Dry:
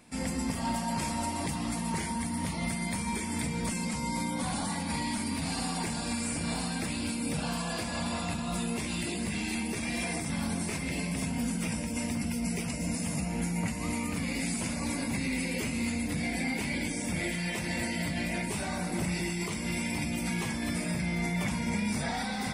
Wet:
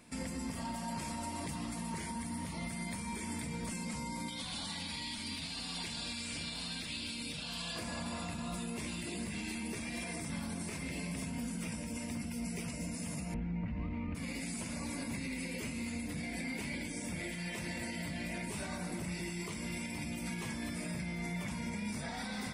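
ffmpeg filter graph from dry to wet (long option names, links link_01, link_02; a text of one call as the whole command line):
ffmpeg -i in.wav -filter_complex "[0:a]asettb=1/sr,asplit=3[link_01][link_02][link_03];[link_01]atrim=end=4.284[link_04];[link_02]atrim=start=4.28:end=7.76,asetpts=PTS-STARTPTS,afade=type=in:duration=0.004:curve=qsin,afade=type=out:start_time=3.476:duration=0.004:curve=qsin,equalizer=frequency=3500:width=1.1:gain=14.5,acrossover=split=110|2600|6400[link_05][link_06][link_07][link_08];[link_05]acompressor=threshold=-49dB:ratio=3[link_09];[link_06]acompressor=threshold=-42dB:ratio=3[link_10];[link_07]acompressor=threshold=-40dB:ratio=3[link_11];[link_08]acompressor=threshold=-48dB:ratio=3[link_12];[link_09][link_10][link_11][link_12]amix=inputs=4:normalize=0[link_13];[link_03]atrim=start=7.756[link_14];[link_04][link_13]acrossfade=duration=0.004:curve1=hsin:curve2=qsin[link_15];[link_15][link_14]acrossfade=duration=0.004:curve1=qsin:curve2=hsin,asettb=1/sr,asplit=3[link_16][link_17][link_18];[link_16]atrim=end=13.344[link_19];[link_17]atrim=start=13.34:end=14.15,asetpts=PTS-STARTPTS,afade=type=in:duration=0.004:curve=qsin,afade=type=out:start_time=0.806:duration=0.004:curve=qsin,lowpass=frequency=3300:width=0.5412,lowpass=frequency=3300:width=1.3066,aemphasis=mode=reproduction:type=bsi[link_20];[link_18]atrim=start=14.146[link_21];[link_19][link_20]acrossfade=duration=0.004:curve1=hsin:curve2=qsin[link_22];[link_22][link_21]acrossfade=duration=0.004:curve1=qsin:curve2=hsin,bandreject=frequency=780:width=12,alimiter=level_in=5dB:limit=-24dB:level=0:latency=1:release=253,volume=-5dB,volume=-1.5dB" out.wav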